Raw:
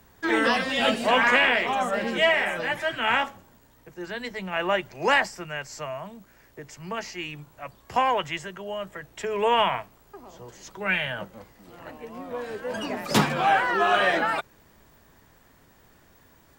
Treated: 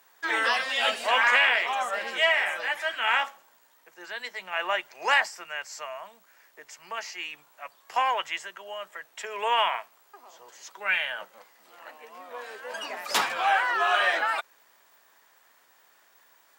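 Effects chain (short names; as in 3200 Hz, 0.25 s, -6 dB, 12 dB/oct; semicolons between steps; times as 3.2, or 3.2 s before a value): HPF 800 Hz 12 dB/oct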